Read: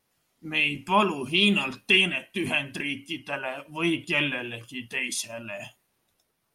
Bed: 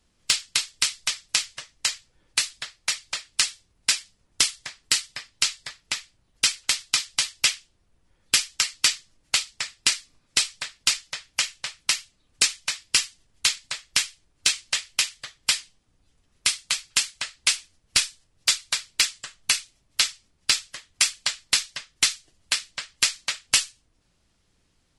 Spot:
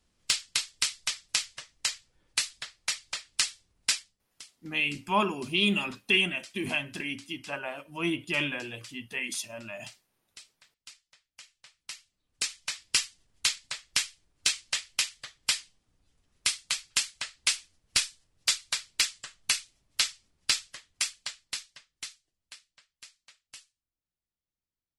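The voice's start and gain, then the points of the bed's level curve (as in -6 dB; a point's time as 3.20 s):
4.20 s, -4.0 dB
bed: 3.96 s -5 dB
4.43 s -28 dB
11.30 s -28 dB
12.80 s -5 dB
20.63 s -5 dB
22.96 s -29 dB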